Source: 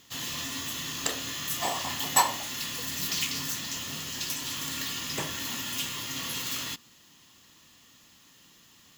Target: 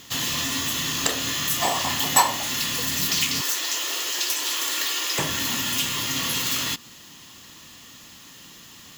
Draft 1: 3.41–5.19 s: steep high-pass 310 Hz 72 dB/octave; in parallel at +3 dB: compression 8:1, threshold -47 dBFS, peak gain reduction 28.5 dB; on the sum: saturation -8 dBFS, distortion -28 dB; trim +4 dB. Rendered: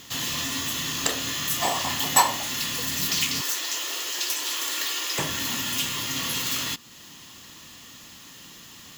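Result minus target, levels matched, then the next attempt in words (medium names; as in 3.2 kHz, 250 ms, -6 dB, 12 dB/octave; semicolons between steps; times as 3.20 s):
compression: peak gain reduction +9 dB
3.41–5.19 s: steep high-pass 310 Hz 72 dB/octave; in parallel at +3 dB: compression 8:1, threshold -37 dBFS, peak gain reduction 20 dB; on the sum: saturation -8 dBFS, distortion -28 dB; trim +4 dB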